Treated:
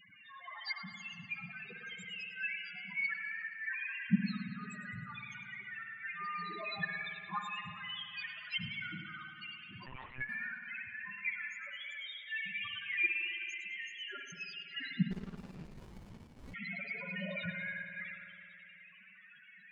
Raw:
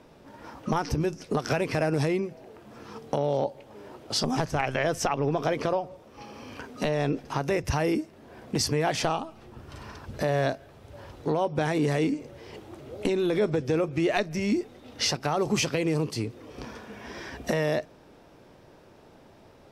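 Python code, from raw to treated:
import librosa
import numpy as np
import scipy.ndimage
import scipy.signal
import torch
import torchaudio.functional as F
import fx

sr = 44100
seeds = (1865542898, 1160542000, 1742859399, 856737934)

p1 = fx.octave_mirror(x, sr, pivot_hz=1000.0)
p2 = fx.peak_eq(p1, sr, hz=2200.0, db=12.5, octaves=1.8)
p3 = fx.transient(p2, sr, attack_db=-5, sustain_db=12)
p4 = fx.quant_dither(p3, sr, seeds[0], bits=6, dither='none')
p5 = p3 + (p4 * 10.0 ** (-5.0 / 20.0))
p6 = fx.gate_flip(p5, sr, shuts_db=-14.0, range_db=-25)
p7 = fx.spec_topn(p6, sr, count=4)
p8 = fx.echo_feedback(p7, sr, ms=104, feedback_pct=42, wet_db=-14.0)
p9 = fx.rev_spring(p8, sr, rt60_s=2.6, pass_ms=(54,), chirp_ms=65, drr_db=4.5)
p10 = fx.lpc_monotone(p9, sr, seeds[1], pitch_hz=130.0, order=10, at=(9.86, 10.29))
p11 = fx.running_max(p10, sr, window=65, at=(15.1, 16.53), fade=0.02)
y = p11 * 10.0 ** (-1.0 / 20.0)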